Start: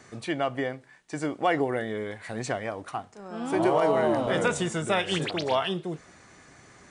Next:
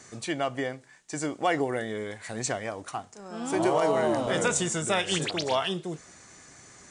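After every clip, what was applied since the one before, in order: peaking EQ 7.1 kHz +11 dB 1.2 oct; trim -1.5 dB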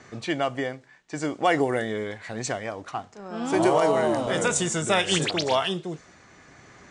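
level-controlled noise filter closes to 3 kHz, open at -21.5 dBFS; tremolo 0.58 Hz, depth 30%; trim +4.5 dB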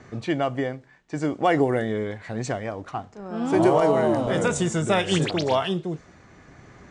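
tilt EQ -2 dB/octave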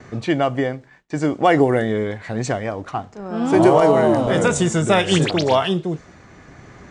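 gate with hold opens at -45 dBFS; trim +5.5 dB

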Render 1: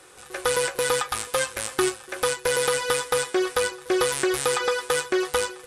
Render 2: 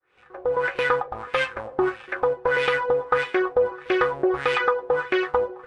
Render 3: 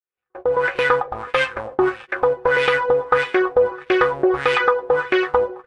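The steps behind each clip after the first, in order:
fade-in on the opening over 0.74 s; LFO low-pass sine 1.6 Hz 620–2600 Hz
gate -38 dBFS, range -36 dB; trim +4.5 dB

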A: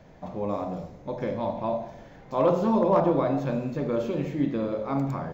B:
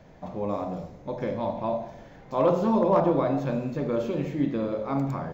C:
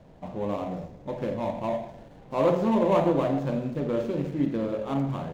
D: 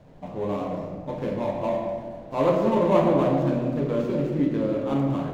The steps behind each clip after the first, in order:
no audible change
median filter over 25 samples
reverberation RT60 1.8 s, pre-delay 7 ms, DRR 1.5 dB

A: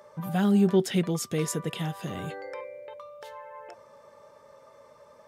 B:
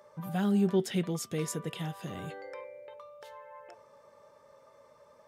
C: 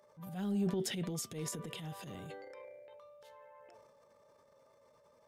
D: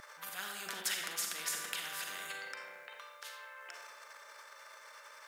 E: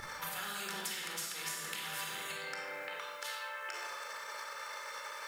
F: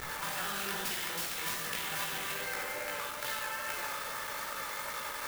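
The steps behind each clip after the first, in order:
de-hum 218.8 Hz, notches 17; trim -5 dB
peaking EQ 1.3 kHz -4.5 dB 1.5 oct; transient shaper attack -9 dB, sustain +8 dB; trim -6 dB
resonant high-pass 1.5 kHz, resonance Q 4.7; reverberation RT60 0.95 s, pre-delay 38 ms, DRR 4 dB; spectrum-flattening compressor 2:1; trim +7 dB
short-mantissa float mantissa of 4-bit; compression 6:1, threshold -47 dBFS, peak gain reduction 15 dB; simulated room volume 2000 m³, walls furnished, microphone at 4.2 m; trim +6 dB
chorus 2.4 Hz, delay 16.5 ms, depth 5 ms; bit crusher 8-bit; sampling jitter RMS 0.039 ms; trim +7.5 dB

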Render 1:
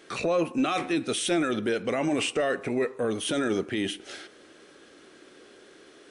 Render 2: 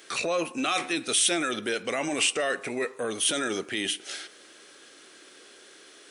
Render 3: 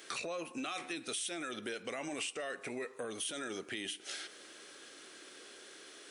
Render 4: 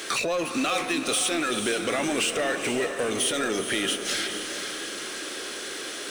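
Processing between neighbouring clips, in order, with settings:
tilt EQ +3 dB/octave
compression 4:1, threshold -37 dBFS, peak gain reduction 15 dB; trim -2 dB
power-law waveshaper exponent 0.7; echo that smears into a reverb 457 ms, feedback 48%, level -7.5 dB; trim +9 dB

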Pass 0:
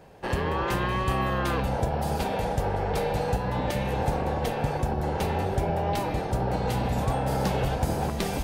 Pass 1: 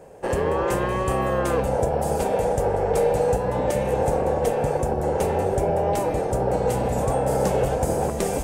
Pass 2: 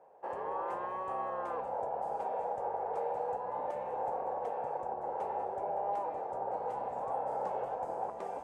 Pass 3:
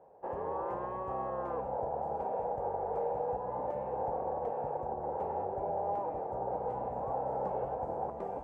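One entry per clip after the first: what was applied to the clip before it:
graphic EQ 500/4000/8000 Hz +10/-8/+11 dB
band-pass filter 890 Hz, Q 2.6; trim -6.5 dB
tilt EQ -4 dB/octave; trim -1.5 dB

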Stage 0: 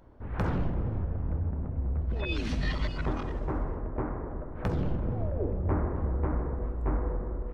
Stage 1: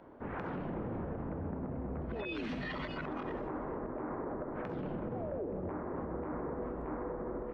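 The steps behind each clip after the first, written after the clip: three-band isolator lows -20 dB, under 170 Hz, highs -18 dB, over 3.3 kHz; compression, threshold -37 dBFS, peak gain reduction 10 dB; peak limiter -36 dBFS, peak gain reduction 10.5 dB; trim +5.5 dB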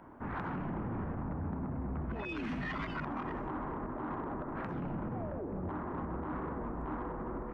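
ten-band graphic EQ 500 Hz -10 dB, 1 kHz +3 dB, 4 kHz -10 dB; saturation -33 dBFS, distortion -22 dB; warped record 33 1/3 rpm, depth 100 cents; trim +4.5 dB

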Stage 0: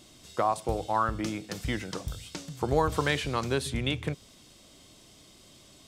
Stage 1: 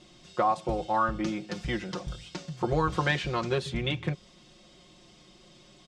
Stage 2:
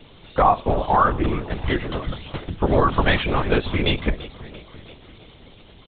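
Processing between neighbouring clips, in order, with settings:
Chebyshev low-pass 6.1 kHz, order 2; treble shelf 5.2 kHz -9.5 dB; comb 5.6 ms, depth 84%
feedback delay 338 ms, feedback 58%, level -18 dB; LPC vocoder at 8 kHz whisper; trim +9 dB

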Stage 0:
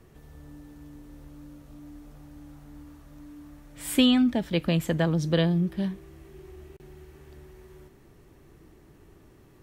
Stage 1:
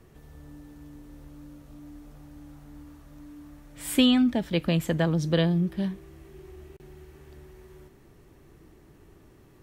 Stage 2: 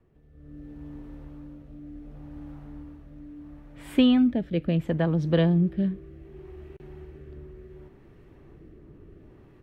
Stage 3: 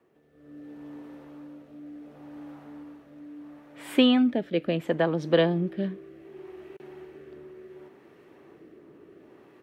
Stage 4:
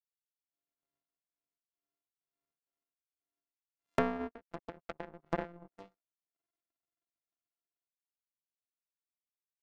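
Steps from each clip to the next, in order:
no audible change
level rider gain up to 12 dB; rotary cabinet horn 0.7 Hz; FFT filter 500 Hz 0 dB, 2.7 kHz -5 dB, 7.1 kHz -19 dB; trim -6.5 dB
high-pass 330 Hz 12 dB/octave; trim +4.5 dB
sorted samples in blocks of 64 samples; low-pass that closes with the level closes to 550 Hz, closed at -22 dBFS; power-law waveshaper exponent 3

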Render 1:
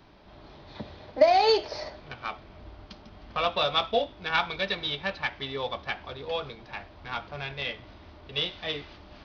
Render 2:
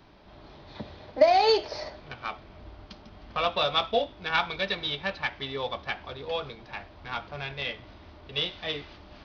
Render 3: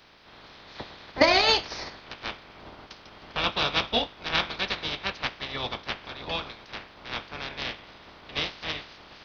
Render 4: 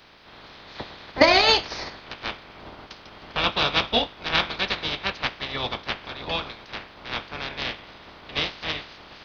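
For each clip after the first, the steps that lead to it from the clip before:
no audible change
spectral peaks clipped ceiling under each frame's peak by 20 dB
peaking EQ 5.6 kHz -3 dB 0.27 oct; trim +3.5 dB

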